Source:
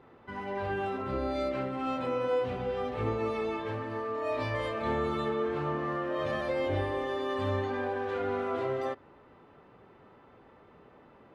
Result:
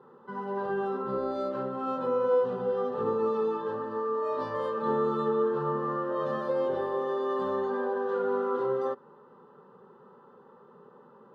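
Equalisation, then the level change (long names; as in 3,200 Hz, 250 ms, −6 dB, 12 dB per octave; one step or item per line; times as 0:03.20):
high-pass filter 180 Hz 12 dB per octave
low-pass filter 1,500 Hz 6 dB per octave
phaser with its sweep stopped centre 450 Hz, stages 8
+6.0 dB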